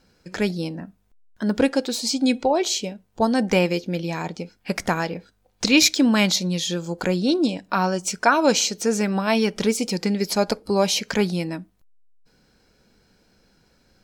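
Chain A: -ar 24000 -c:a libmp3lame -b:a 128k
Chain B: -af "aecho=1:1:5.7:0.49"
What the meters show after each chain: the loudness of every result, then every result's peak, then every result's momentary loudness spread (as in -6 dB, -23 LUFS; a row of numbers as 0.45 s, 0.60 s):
-22.5 LUFS, -21.0 LUFS; -2.5 dBFS, -2.0 dBFS; 12 LU, 11 LU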